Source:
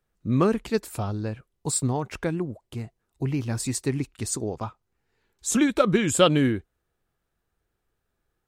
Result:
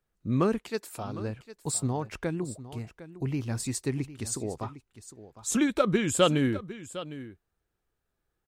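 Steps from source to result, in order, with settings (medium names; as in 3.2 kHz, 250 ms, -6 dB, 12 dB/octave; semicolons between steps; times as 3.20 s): 0.58–1.19 s: high-pass 560 Hz -> 230 Hz 6 dB/octave; delay 756 ms -15 dB; trim -4 dB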